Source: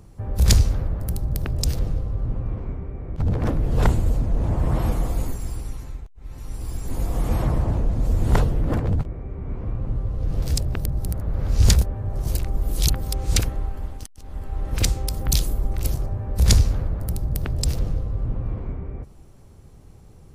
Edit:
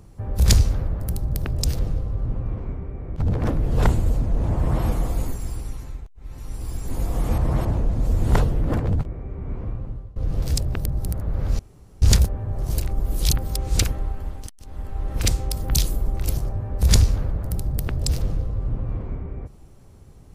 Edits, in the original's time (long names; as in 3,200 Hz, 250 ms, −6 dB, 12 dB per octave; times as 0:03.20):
0:07.38–0:07.65: reverse
0:09.60–0:10.16: fade out, to −22.5 dB
0:11.59: splice in room tone 0.43 s